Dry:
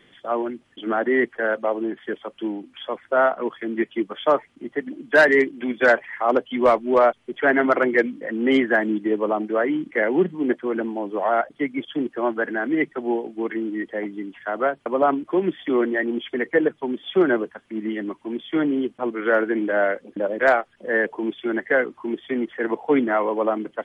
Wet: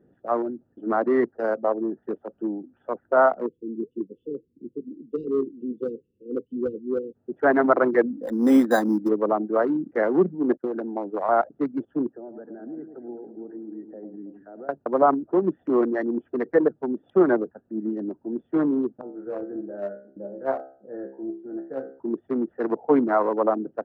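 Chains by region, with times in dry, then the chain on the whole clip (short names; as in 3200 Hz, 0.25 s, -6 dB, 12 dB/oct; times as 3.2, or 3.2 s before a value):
1.31–2.03 median filter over 15 samples + high shelf 3400 Hz -9.5 dB
3.46–7.15 flange 1.6 Hz, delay 0 ms, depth 4.9 ms, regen -81% + brick-wall FIR band-stop 520–2600 Hz
8.1–9.09 careless resampling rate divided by 8×, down none, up hold + comb 3.9 ms, depth 55%
10.57–11.29 expander -32 dBFS + tilt +2.5 dB/oct + three-band squash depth 100%
12.12–14.69 compressor 2.5:1, threshold -39 dBFS + high shelf 3500 Hz -9.5 dB + echo with dull and thin repeats by turns 0.108 s, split 1100 Hz, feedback 67%, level -8 dB
19.01–22 high shelf 2200 Hz -12 dB + resonator 67 Hz, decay 0.45 s, mix 90% + Doppler distortion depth 0.13 ms
whole clip: Wiener smoothing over 41 samples; HPF 46 Hz; resonant high shelf 1700 Hz -12.5 dB, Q 1.5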